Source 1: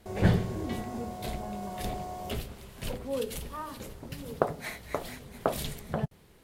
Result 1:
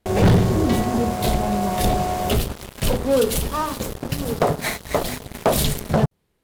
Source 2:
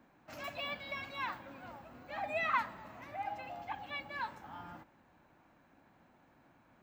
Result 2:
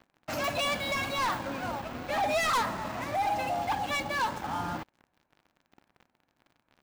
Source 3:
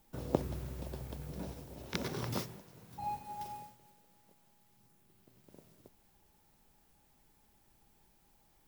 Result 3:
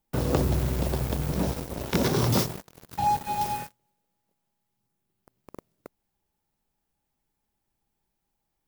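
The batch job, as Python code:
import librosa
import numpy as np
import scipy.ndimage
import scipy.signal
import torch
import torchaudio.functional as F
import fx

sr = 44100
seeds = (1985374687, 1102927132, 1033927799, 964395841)

y = fx.leveller(x, sr, passes=5)
y = fx.dynamic_eq(y, sr, hz=2100.0, q=1.1, threshold_db=-37.0, ratio=4.0, max_db=-4)
y = F.gain(torch.from_numpy(y), -2.0).numpy()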